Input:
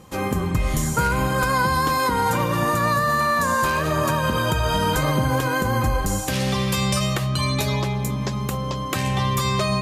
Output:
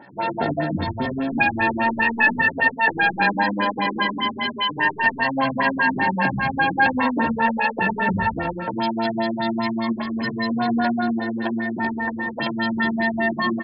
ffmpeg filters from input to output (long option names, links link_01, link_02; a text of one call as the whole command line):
ffmpeg -i in.wav -filter_complex "[0:a]highpass=130,equalizer=frequency=240:width_type=o:width=0.4:gain=11,aecho=1:1:2.1:0.81,acontrast=81,atempo=0.72,aexciter=amount=1.2:drive=7.5:freq=5600,asetrate=76340,aresample=44100,atempo=0.577676,asplit=2[link_01][link_02];[link_02]aecho=0:1:21|78:0.316|0.562[link_03];[link_01][link_03]amix=inputs=2:normalize=0,afftfilt=real='re*lt(b*sr/1024,300*pow(5400/300,0.5+0.5*sin(2*PI*5*pts/sr)))':imag='im*lt(b*sr/1024,300*pow(5400/300,0.5+0.5*sin(2*PI*5*pts/sr)))':win_size=1024:overlap=0.75,volume=-6.5dB" out.wav